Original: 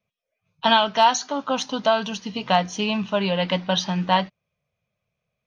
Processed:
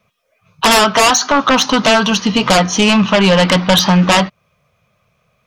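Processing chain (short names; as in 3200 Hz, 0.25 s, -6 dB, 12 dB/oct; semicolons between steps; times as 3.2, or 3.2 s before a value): bell 1200 Hz +8.5 dB 0.57 oct; in parallel at +2 dB: compressor, threshold -24 dBFS, peak gain reduction 14.5 dB; on the sum: sine folder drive 13 dB, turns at 0 dBFS; gain -6 dB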